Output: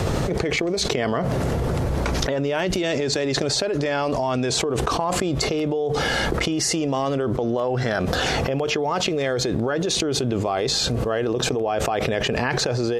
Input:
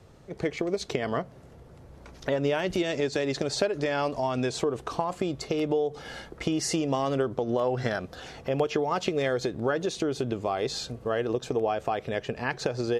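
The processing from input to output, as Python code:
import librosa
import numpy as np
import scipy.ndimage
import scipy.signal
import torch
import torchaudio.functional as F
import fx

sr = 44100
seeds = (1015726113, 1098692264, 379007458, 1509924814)

y = fx.env_flatten(x, sr, amount_pct=100)
y = F.gain(torch.from_numpy(y), -1.5).numpy()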